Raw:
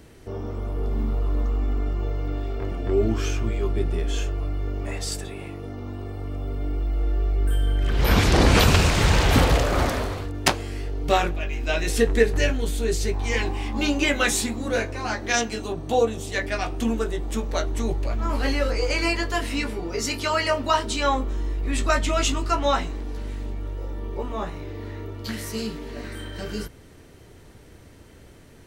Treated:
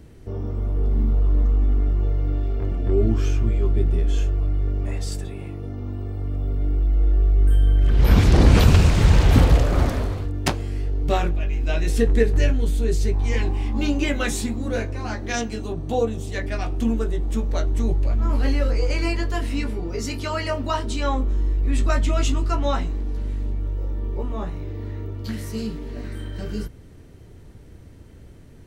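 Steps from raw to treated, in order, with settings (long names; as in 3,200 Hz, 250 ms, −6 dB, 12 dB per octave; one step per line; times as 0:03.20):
low-shelf EQ 330 Hz +11.5 dB
level −5.5 dB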